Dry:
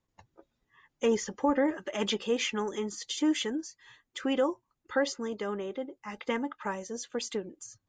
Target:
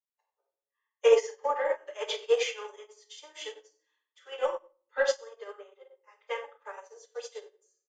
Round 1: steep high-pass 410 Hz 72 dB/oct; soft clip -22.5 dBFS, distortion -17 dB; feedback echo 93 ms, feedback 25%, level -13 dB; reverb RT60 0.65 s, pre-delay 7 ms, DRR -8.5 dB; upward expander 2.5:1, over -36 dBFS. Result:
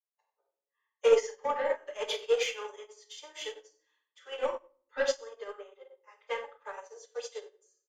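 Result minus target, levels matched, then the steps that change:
soft clip: distortion +14 dB
change: soft clip -13.5 dBFS, distortion -31 dB

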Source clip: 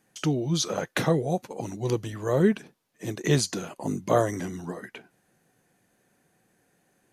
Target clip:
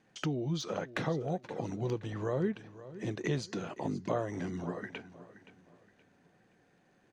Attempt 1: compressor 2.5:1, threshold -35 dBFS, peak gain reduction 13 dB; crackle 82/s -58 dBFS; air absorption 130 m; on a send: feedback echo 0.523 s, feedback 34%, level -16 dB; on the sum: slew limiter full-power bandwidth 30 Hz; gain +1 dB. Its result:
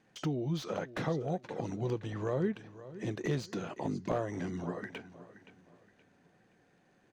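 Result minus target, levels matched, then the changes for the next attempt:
slew limiter: distortion +12 dB
change: slew limiter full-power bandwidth 101.5 Hz

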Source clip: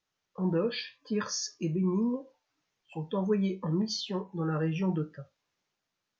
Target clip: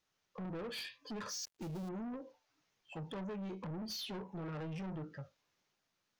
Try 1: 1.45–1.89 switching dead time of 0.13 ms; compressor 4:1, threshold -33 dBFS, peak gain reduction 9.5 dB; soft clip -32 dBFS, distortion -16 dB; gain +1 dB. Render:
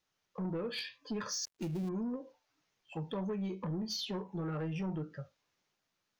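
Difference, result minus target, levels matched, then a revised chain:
soft clip: distortion -8 dB
1.45–1.89 switching dead time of 0.13 ms; compressor 4:1, threshold -33 dBFS, peak gain reduction 9.5 dB; soft clip -41 dBFS, distortion -8 dB; gain +1 dB

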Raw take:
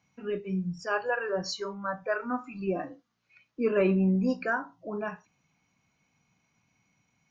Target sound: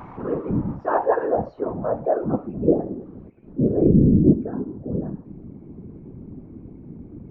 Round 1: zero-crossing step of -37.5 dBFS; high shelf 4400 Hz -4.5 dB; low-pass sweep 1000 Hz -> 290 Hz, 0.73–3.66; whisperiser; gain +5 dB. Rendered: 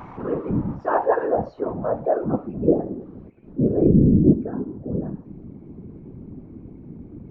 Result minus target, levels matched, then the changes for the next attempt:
4000 Hz band +3.5 dB
change: high shelf 4400 Hz -14.5 dB

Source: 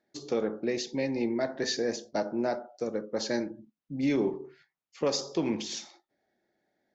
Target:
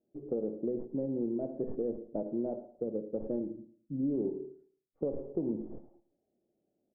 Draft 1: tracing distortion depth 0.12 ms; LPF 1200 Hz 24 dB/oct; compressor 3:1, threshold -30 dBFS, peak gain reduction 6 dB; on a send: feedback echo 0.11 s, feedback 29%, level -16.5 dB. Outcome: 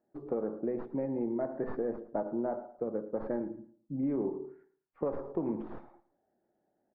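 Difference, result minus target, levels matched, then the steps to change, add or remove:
1000 Hz band +10.0 dB
change: LPF 550 Hz 24 dB/oct

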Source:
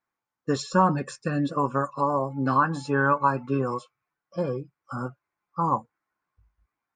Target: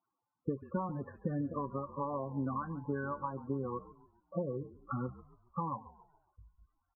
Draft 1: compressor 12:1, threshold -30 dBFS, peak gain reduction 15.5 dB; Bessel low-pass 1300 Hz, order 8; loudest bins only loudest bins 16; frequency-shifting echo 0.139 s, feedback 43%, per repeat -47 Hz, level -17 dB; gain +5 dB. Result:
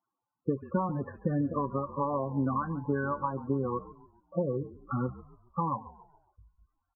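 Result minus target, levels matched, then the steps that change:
compressor: peak gain reduction -6.5 dB
change: compressor 12:1, threshold -37 dBFS, peak gain reduction 22 dB

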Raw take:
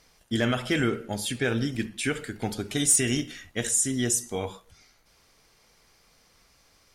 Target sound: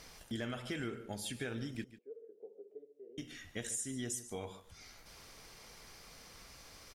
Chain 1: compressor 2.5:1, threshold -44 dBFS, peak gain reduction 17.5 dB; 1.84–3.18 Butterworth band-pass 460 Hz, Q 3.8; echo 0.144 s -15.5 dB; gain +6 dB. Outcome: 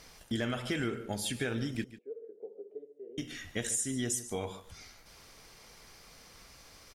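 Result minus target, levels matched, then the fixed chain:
compressor: peak gain reduction -6.5 dB
compressor 2.5:1, threshold -55 dBFS, peak gain reduction 24 dB; 1.84–3.18 Butterworth band-pass 460 Hz, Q 3.8; echo 0.144 s -15.5 dB; gain +6 dB

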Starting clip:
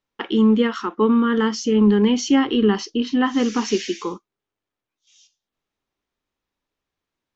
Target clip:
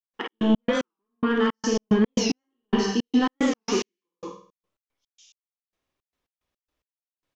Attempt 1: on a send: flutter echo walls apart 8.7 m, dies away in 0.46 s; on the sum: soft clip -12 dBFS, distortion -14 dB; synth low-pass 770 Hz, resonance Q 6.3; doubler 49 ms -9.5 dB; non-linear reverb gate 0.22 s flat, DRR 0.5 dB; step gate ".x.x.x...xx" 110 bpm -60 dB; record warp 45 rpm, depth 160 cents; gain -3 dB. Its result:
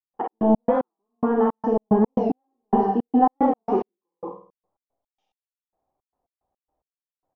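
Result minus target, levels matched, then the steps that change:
1000 Hz band +7.0 dB
remove: synth low-pass 770 Hz, resonance Q 6.3

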